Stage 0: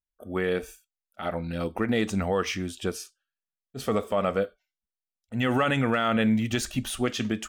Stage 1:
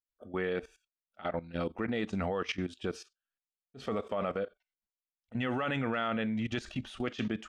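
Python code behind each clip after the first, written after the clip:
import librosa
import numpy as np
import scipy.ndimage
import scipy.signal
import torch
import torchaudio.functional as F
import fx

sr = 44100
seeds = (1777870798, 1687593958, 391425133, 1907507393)

y = scipy.signal.sosfilt(scipy.signal.butter(2, 4100.0, 'lowpass', fs=sr, output='sos'), x)
y = fx.low_shelf(y, sr, hz=120.0, db=-5.5)
y = fx.level_steps(y, sr, step_db=16)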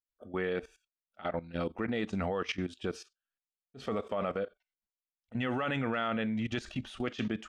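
y = x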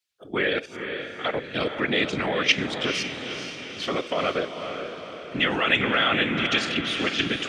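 y = fx.whisperise(x, sr, seeds[0])
y = fx.weighting(y, sr, curve='D')
y = fx.echo_diffused(y, sr, ms=468, feedback_pct=54, wet_db=-7.0)
y = y * librosa.db_to_amplitude(7.0)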